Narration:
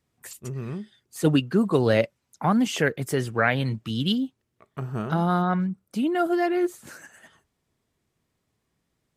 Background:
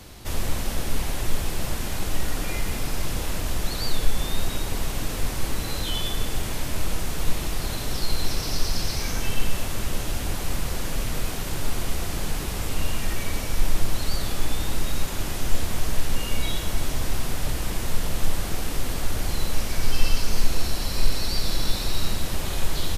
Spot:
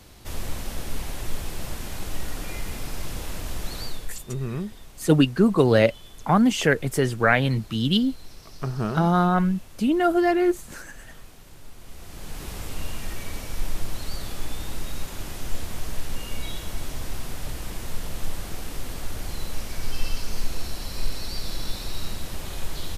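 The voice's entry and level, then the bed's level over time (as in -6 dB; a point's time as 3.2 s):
3.85 s, +3.0 dB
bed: 3.81 s -5 dB
4.26 s -19 dB
11.77 s -19 dB
12.47 s -6 dB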